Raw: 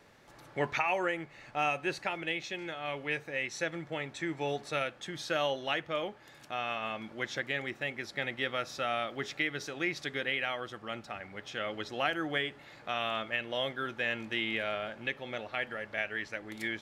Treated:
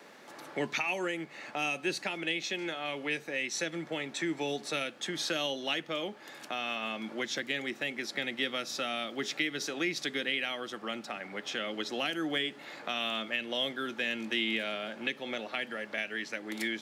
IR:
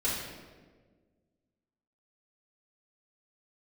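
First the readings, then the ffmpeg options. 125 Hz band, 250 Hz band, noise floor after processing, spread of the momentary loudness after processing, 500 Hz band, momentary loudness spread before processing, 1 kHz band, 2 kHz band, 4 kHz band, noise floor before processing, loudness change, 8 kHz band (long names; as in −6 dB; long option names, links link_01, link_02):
−3.5 dB, +3.5 dB, −51 dBFS, 6 LU, −1.0 dB, 8 LU, −3.5 dB, 0.0 dB, +4.5 dB, −56 dBFS, +1.0 dB, +7.5 dB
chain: -filter_complex "[0:a]highpass=frequency=200:width=0.5412,highpass=frequency=200:width=1.3066,acrossover=split=300|3000[link_01][link_02][link_03];[link_02]acompressor=threshold=-44dB:ratio=6[link_04];[link_01][link_04][link_03]amix=inputs=3:normalize=0,volume=7.5dB"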